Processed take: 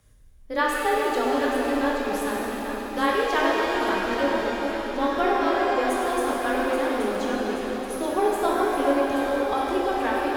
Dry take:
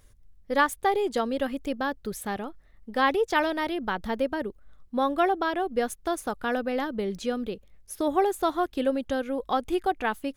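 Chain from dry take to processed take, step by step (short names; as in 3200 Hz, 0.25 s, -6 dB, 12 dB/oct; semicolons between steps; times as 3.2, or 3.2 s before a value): echo with dull and thin repeats by turns 0.414 s, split 1100 Hz, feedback 72%, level -5 dB; frequency shift +17 Hz; shimmer reverb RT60 2.5 s, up +7 st, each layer -8 dB, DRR -3 dB; gain -3 dB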